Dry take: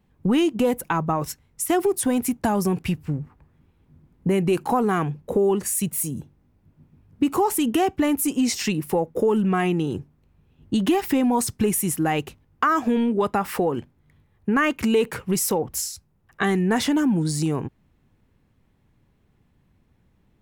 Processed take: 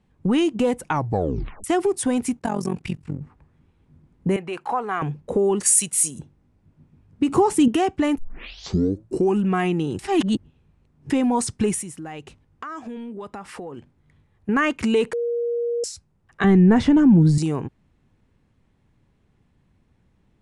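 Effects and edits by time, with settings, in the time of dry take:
0.88 tape stop 0.76 s
2.39–3.22 AM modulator 45 Hz, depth 80%
4.36–5.02 three-band isolator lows -16 dB, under 530 Hz, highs -12 dB, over 3300 Hz
5.6–6.19 tilt +3.5 dB/oct
7.28–7.68 bell 140 Hz +12 dB 2.3 oct
8.18 tape start 1.25 s
9.99–11.1 reverse
11.82–14.49 compressor 2.5:1, threshold -38 dBFS
15.13–15.84 bleep 473 Hz -21 dBFS
16.44–17.38 RIAA curve playback
whole clip: steep low-pass 10000 Hz 48 dB/oct

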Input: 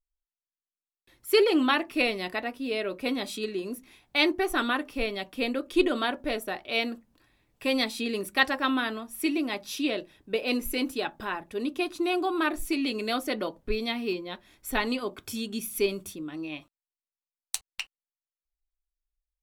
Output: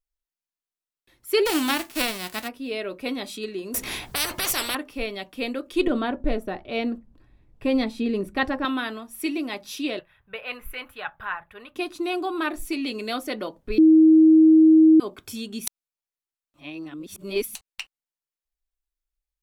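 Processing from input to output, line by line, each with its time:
1.45–2.47 spectral whitening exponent 0.3
3.74–4.75 spectral compressor 10:1
5.87–8.65 tilt -3.5 dB/oct
9.99–11.76 EQ curve 120 Hz 0 dB, 180 Hz -9 dB, 300 Hz -24 dB, 460 Hz -10 dB, 1400 Hz +6 dB, 3400 Hz -5 dB, 5400 Hz -21 dB, 7900 Hz -17 dB, 14000 Hz -5 dB
13.78–15 bleep 317 Hz -10 dBFS
15.67–17.55 reverse

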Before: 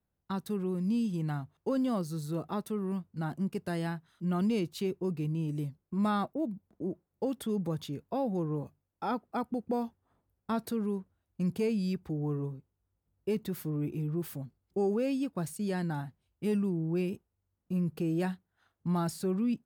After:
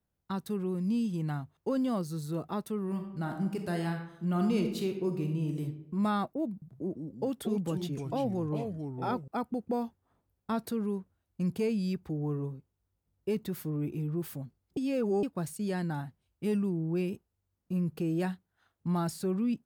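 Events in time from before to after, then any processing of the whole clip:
2.84–5.62 reverb throw, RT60 0.83 s, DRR 4 dB
6.52–9.28 echoes that change speed 98 ms, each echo -3 st, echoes 2, each echo -6 dB
14.77–15.23 reverse

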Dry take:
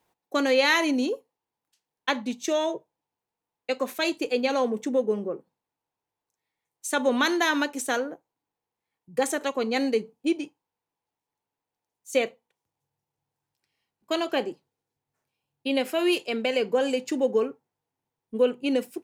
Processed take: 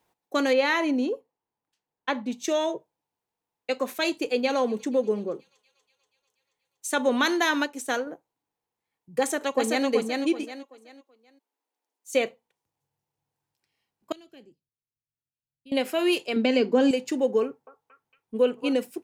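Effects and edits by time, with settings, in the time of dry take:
0.53–2.32 high shelf 3200 Hz -12 dB
4.19–6.98 thin delay 0.24 s, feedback 68%, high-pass 2600 Hz, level -20.5 dB
7.55–8.07 upward expander, over -34 dBFS
9.19–9.86 echo throw 0.38 s, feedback 30%, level -3 dB
10.43–12.12 steep high-pass 240 Hz
14.12–15.72 passive tone stack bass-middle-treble 10-0-1
16.36–16.91 EQ curve 180 Hz 0 dB, 250 Hz +12 dB, 490 Hz +1 dB, 3000 Hz 0 dB, 4700 Hz +4 dB, 14000 Hz -13 dB
17.44–18.73 delay with a stepping band-pass 0.229 s, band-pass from 980 Hz, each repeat 0.7 oct, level -3 dB

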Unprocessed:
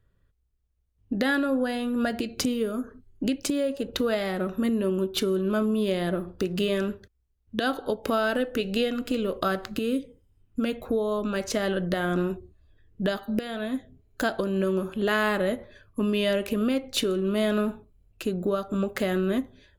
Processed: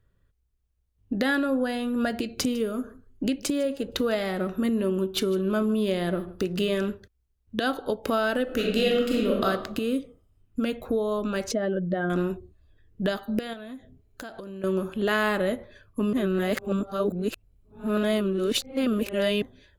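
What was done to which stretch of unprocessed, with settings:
2.29–6.9 echo 0.153 s -21 dB
8.43–9.43 reverb throw, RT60 0.89 s, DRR -2 dB
11.51–12.1 spectral contrast raised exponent 1.7
13.53–14.64 compressor 4:1, threshold -38 dBFS
16.13–19.42 reverse

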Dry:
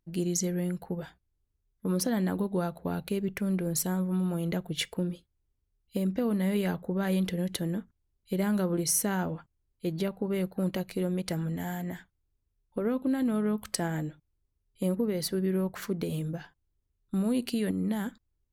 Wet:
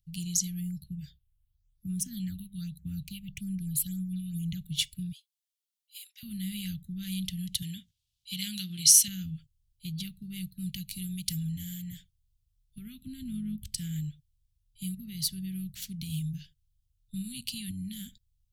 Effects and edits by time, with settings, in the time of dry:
0.6–4.56 phaser stages 6, 0.5 Hz -> 2.8 Hz, lowest notch 380–4400 Hz
5.12–6.23 steep high-pass 1100 Hz
7.62–9.08 weighting filter D
10.88–11.47 high shelf 7100 Hz +8.5 dB
13.06–13.78 tilt shelf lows +6.5 dB, about 670 Hz
whole clip: Chebyshev band-stop 140–3100 Hz, order 3; gain +4.5 dB

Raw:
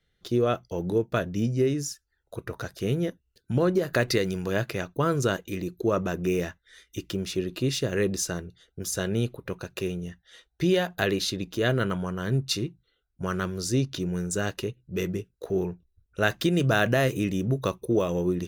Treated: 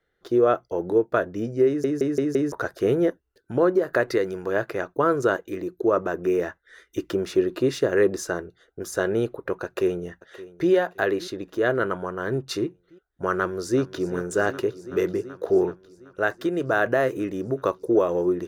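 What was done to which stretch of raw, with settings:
1.67 stutter in place 0.17 s, 5 plays
9.64–10.7 echo throw 0.57 s, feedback 55%, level -17 dB
13.34–14.1 echo throw 0.38 s, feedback 85%, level -15.5 dB
whole clip: band shelf 730 Hz +13 dB 3 oct; AGC gain up to 4.5 dB; gain -7 dB

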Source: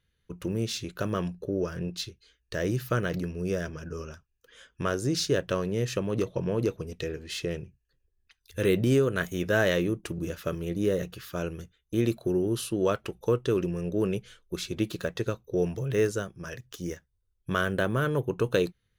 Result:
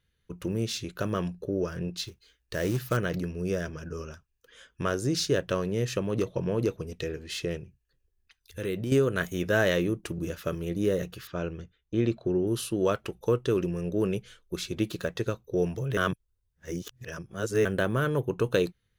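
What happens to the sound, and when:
2.03–2.97 short-mantissa float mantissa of 2-bit
7.57–8.92 compressor 1.5:1, threshold -41 dBFS
11.27–12.47 air absorption 140 m
15.97–17.65 reverse

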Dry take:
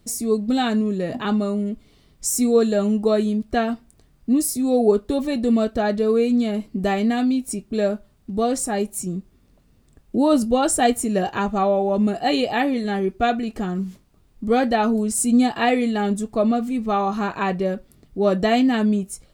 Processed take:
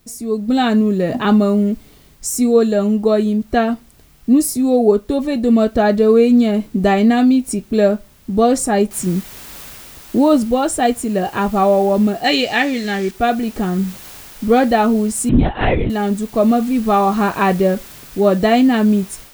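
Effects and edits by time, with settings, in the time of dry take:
8.91 noise floor step -58 dB -44 dB
12.24–13.11 band shelf 3500 Hz +9 dB 2.6 oct
15.29–15.9 LPC vocoder at 8 kHz whisper
whole clip: bell 8800 Hz -4 dB 2.8 oct; AGC gain up to 13.5 dB; gain -1 dB

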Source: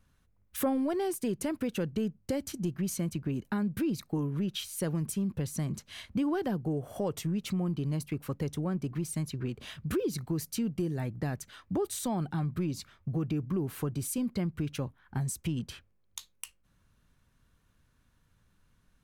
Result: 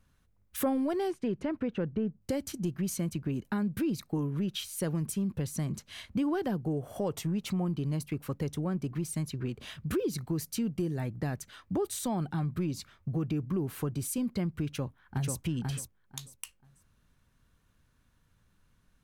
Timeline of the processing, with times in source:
1.1–2.2 LPF 3200 Hz -> 1500 Hz
7.11–7.65 bell 830 Hz +5.5 dB
14.67–15.38 echo throw 0.49 s, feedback 20%, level -3 dB

